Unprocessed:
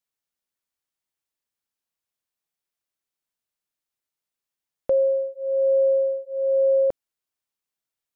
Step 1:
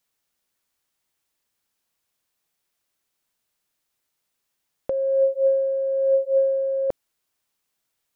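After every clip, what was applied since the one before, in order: compressor with a negative ratio -26 dBFS, ratio -1; trim +5 dB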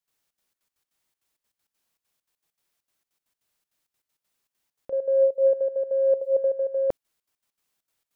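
trance gate ".xxx.xx.x.x" 198 bpm -12 dB

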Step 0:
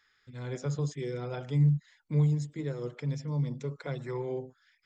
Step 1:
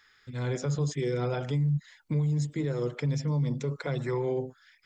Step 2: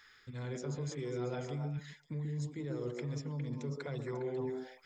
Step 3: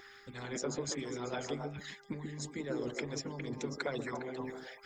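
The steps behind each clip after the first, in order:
peak limiter -29 dBFS, peak gain reduction 12 dB; trim +7.5 dB
reverse; compression 5:1, threshold -39 dBFS, peak gain reduction 13.5 dB; reverse; repeats whose band climbs or falls 136 ms, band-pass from 320 Hz, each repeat 1.4 oct, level 0 dB; trim +1 dB
mains buzz 400 Hz, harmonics 5, -55 dBFS -5 dB/octave; harmonic-percussive split harmonic -18 dB; trim +10 dB

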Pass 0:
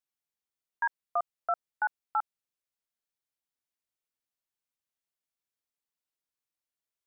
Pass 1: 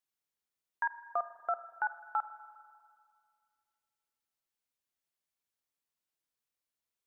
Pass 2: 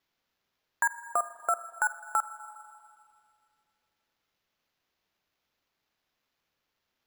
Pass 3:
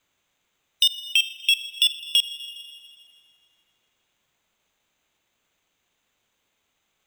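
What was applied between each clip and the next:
in parallel at +0.5 dB: compression, threshold -36 dBFS, peak gain reduction 11 dB; on the sum: spring tank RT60 2.1 s, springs 39/49 ms, chirp 40 ms, DRR 13 dB; trim -6 dB
dynamic bell 790 Hz, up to -7 dB, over -48 dBFS, Q 2.1; sample-and-hold 5×; trim +8 dB
split-band scrambler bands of 2 kHz; trim +8 dB

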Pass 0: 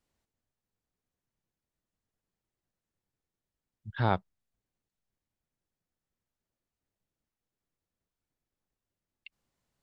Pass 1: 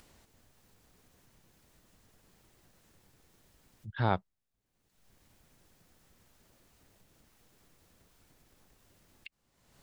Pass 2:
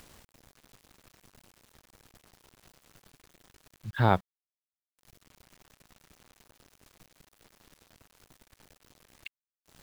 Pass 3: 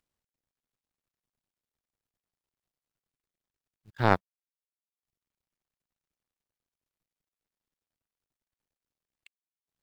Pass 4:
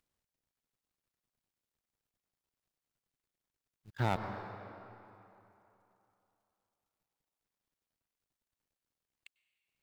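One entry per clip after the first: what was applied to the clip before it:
upward compressor, threshold -42 dBFS; trim -1.5 dB
treble shelf 8.3 kHz -7.5 dB; word length cut 10-bit, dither none; trim +5.5 dB
in parallel at -8.5 dB: saturation -23.5 dBFS, distortion -5 dB; on the sum: power-law waveshaper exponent 2; trim +3.5 dB
reverberation RT60 3.1 s, pre-delay 92 ms, DRR 16 dB; saturation -20.5 dBFS, distortion -2 dB

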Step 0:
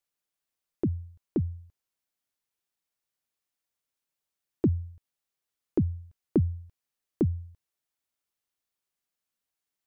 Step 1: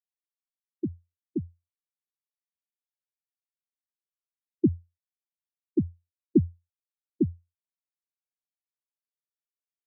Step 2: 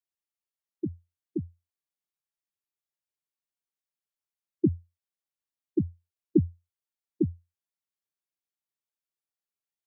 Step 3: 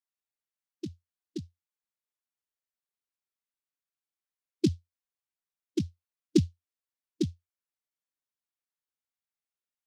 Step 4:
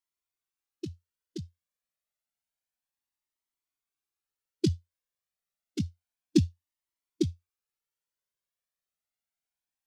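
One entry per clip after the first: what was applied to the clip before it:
high-pass 210 Hz 6 dB/octave; spectral contrast expander 2.5:1; trim +5 dB
comb of notches 250 Hz
expander on every frequency bin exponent 1.5; delay time shaken by noise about 4.2 kHz, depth 0.068 ms
Shepard-style flanger rising 0.29 Hz; trim +5.5 dB

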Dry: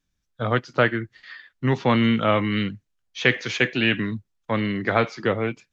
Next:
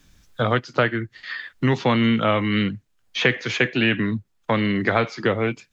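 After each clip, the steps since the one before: band-stop 5.8 kHz, Q 30; three bands compressed up and down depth 70%; trim +1 dB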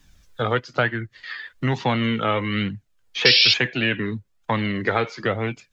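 painted sound noise, 3.25–3.54 s, 2.2–5.6 kHz -14 dBFS; flange 1.1 Hz, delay 1 ms, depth 1.5 ms, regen +43%; trim +2.5 dB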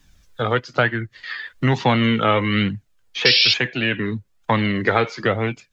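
level rider gain up to 5 dB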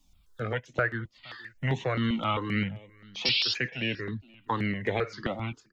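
delay 470 ms -23 dB; stepped phaser 7.6 Hz 440–4800 Hz; trim -7.5 dB

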